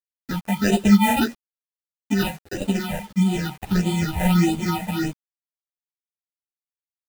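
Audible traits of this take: aliases and images of a low sample rate 1.1 kHz, jitter 0%; phasing stages 6, 1.6 Hz, lowest notch 330–1600 Hz; a quantiser's noise floor 8-bit, dither none; a shimmering, thickened sound

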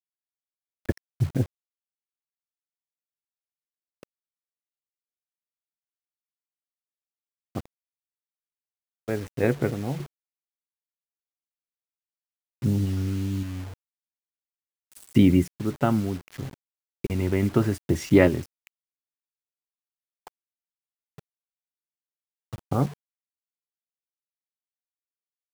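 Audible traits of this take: random-step tremolo, depth 65%; a quantiser's noise floor 8-bit, dither none

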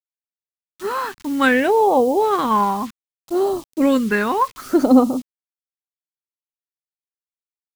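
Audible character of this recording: a quantiser's noise floor 8-bit, dither none; phasing stages 2, 0.64 Hz, lowest notch 550–1500 Hz

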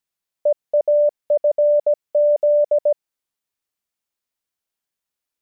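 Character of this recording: noise floor -86 dBFS; spectral tilt +9.0 dB/octave

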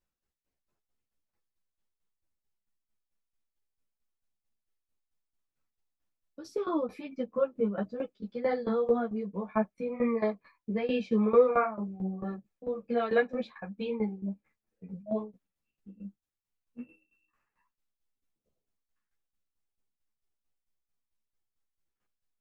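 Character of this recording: tremolo saw down 4.5 Hz, depth 85%; a shimmering, thickened sound

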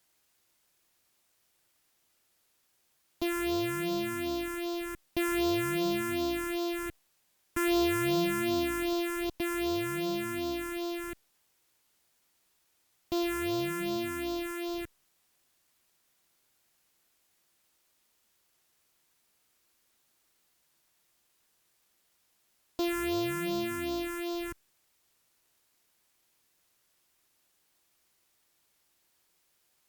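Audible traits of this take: a buzz of ramps at a fixed pitch in blocks of 128 samples; phasing stages 4, 2.6 Hz, lowest notch 660–1900 Hz; a quantiser's noise floor 12-bit, dither triangular; Opus

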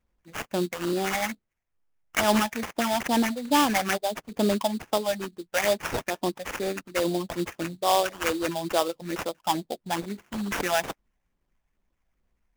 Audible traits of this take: phasing stages 8, 2.3 Hz, lowest notch 330–3200 Hz; aliases and images of a low sample rate 4.2 kHz, jitter 20%

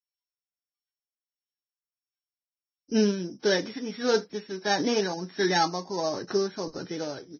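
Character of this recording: a buzz of ramps at a fixed pitch in blocks of 8 samples; tremolo triangle 1.5 Hz, depth 65%; Vorbis

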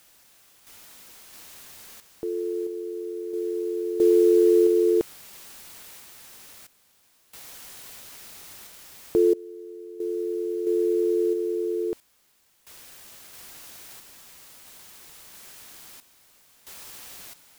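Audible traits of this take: a quantiser's noise floor 8-bit, dither triangular; random-step tremolo 1.5 Hz, depth 95%

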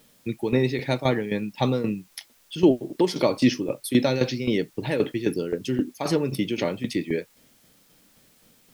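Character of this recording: tremolo saw down 3.8 Hz, depth 75%; a quantiser's noise floor 10-bit, dither triangular

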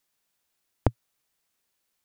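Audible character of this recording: noise floor -78 dBFS; spectral tilt -7.5 dB/octave

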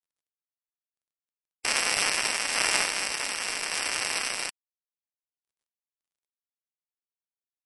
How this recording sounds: a buzz of ramps at a fixed pitch in blocks of 16 samples; random-step tremolo; a quantiser's noise floor 12-bit, dither none; MP3

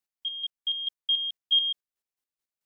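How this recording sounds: chopped level 4.6 Hz, depth 60%, duty 30%

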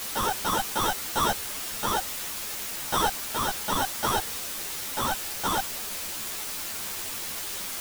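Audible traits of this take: aliases and images of a low sample rate 2.3 kHz, jitter 0%; tremolo saw up 0.61 Hz, depth 45%; a quantiser's noise floor 6-bit, dither triangular; a shimmering, thickened sound

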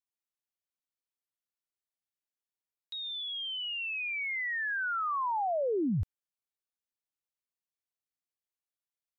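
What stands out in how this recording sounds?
noise floor -95 dBFS; spectral tilt -2.0 dB/octave

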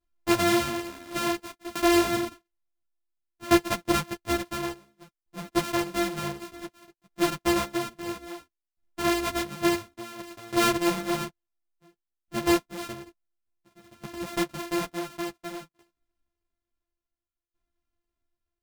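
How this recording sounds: a buzz of ramps at a fixed pitch in blocks of 128 samples; tremolo saw down 0.57 Hz, depth 90%; a shimmering, thickened sound

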